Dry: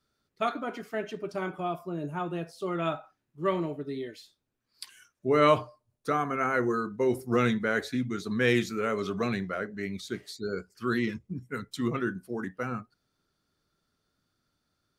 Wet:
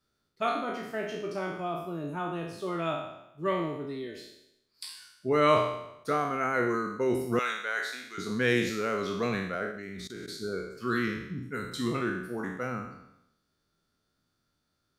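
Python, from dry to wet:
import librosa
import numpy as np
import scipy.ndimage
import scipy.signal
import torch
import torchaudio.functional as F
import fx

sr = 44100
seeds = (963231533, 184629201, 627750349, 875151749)

y = fx.spec_trails(x, sr, decay_s=0.83)
y = fx.highpass(y, sr, hz=870.0, slope=12, at=(7.39, 8.18))
y = fx.level_steps(y, sr, step_db=19, at=(9.71, 10.28))
y = F.gain(torch.from_numpy(y), -2.5).numpy()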